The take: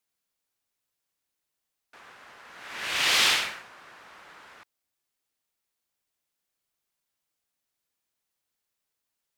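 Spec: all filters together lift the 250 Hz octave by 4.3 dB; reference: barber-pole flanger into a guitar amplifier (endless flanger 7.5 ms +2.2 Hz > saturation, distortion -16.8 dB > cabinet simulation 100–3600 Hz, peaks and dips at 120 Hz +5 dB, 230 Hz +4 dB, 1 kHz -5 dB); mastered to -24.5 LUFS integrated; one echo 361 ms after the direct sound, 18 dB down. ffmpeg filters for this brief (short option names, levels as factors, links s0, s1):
-filter_complex "[0:a]equalizer=f=250:t=o:g=3.5,aecho=1:1:361:0.126,asplit=2[s0][s1];[s1]adelay=7.5,afreqshift=2.2[s2];[s0][s2]amix=inputs=2:normalize=1,asoftclip=threshold=0.106,highpass=100,equalizer=f=120:t=q:w=4:g=5,equalizer=f=230:t=q:w=4:g=4,equalizer=f=1000:t=q:w=4:g=-5,lowpass=f=3600:w=0.5412,lowpass=f=3600:w=1.3066,volume=2"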